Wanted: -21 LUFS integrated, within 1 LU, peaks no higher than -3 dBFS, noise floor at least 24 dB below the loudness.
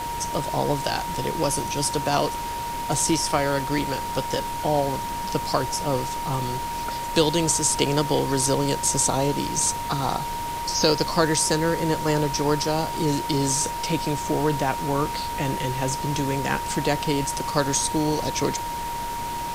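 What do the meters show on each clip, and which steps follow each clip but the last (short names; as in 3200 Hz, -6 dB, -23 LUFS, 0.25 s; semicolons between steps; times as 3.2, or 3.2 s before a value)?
steady tone 940 Hz; tone level -28 dBFS; noise floor -30 dBFS; noise floor target -48 dBFS; loudness -24.0 LUFS; peak -4.0 dBFS; loudness target -21.0 LUFS
-> notch 940 Hz, Q 30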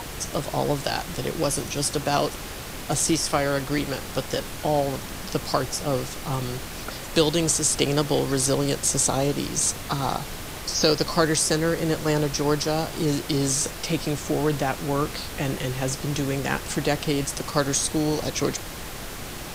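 steady tone none; noise floor -36 dBFS; noise floor target -49 dBFS
-> noise print and reduce 13 dB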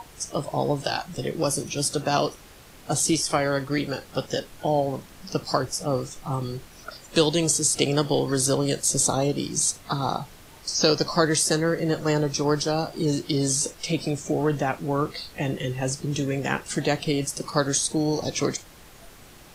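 noise floor -48 dBFS; noise floor target -49 dBFS
-> noise print and reduce 6 dB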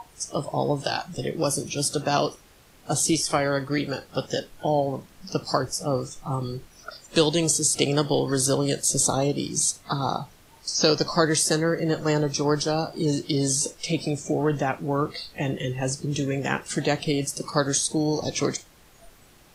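noise floor -54 dBFS; loudness -25.0 LUFS; peak -4.5 dBFS; loudness target -21.0 LUFS
-> gain +4 dB; limiter -3 dBFS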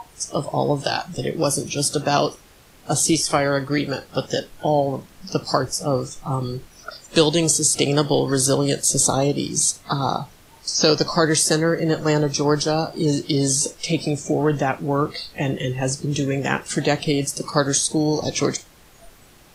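loudness -21.0 LUFS; peak -3.0 dBFS; noise floor -50 dBFS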